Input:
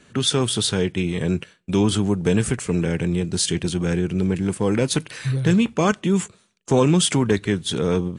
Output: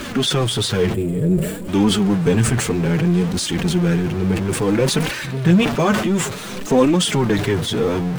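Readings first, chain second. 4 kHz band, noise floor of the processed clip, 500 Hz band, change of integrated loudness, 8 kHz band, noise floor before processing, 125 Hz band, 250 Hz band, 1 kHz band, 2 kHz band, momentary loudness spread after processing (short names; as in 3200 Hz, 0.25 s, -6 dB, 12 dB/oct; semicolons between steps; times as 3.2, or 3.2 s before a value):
+2.5 dB, -29 dBFS, +3.0 dB, +3.0 dB, +0.5 dB, -59 dBFS, +3.0 dB, +3.0 dB, +4.5 dB, +4.5 dB, 5 LU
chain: zero-crossing step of -23 dBFS; spectral gain 0.94–1.68, 670–6900 Hz -15 dB; high shelf 4600 Hz -9 dB; flange 0.58 Hz, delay 3.1 ms, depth 6.2 ms, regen -2%; pre-echo 0.228 s -24 dB; sustainer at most 68 dB/s; gain +4 dB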